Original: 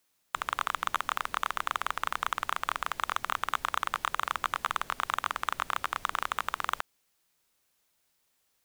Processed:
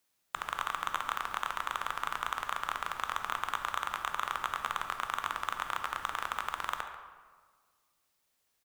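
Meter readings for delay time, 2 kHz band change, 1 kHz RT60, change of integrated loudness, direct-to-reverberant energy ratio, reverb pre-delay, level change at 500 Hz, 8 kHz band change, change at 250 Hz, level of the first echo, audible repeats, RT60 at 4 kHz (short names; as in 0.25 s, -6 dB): 0.14 s, -3.0 dB, 1.6 s, -3.0 dB, 5.5 dB, 13 ms, -3.0 dB, -3.5 dB, -3.0 dB, -16.0 dB, 1, 0.90 s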